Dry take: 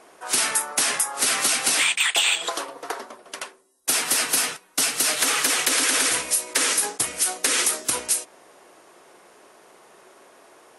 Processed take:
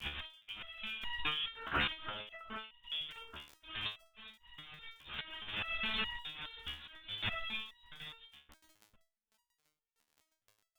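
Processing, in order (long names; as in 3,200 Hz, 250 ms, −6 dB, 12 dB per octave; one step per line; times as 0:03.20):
slices reordered back to front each 258 ms, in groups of 2
dynamic equaliser 1,800 Hz, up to −7 dB, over −41 dBFS, Q 2.3
on a send: feedback echo with a high-pass in the loop 786 ms, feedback 36%, level −20.5 dB
on the sum: noise gate −42 dBFS, range −16 dB
voice inversion scrambler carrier 3,900 Hz
low-pass that shuts in the quiet parts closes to 630 Hz, open at −26.5 dBFS
parametric band 550 Hz −14 dB 2.9 octaves
surface crackle 29 per second −39 dBFS
volume swells 381 ms
step-sequenced resonator 4.8 Hz 73–950 Hz
level +11 dB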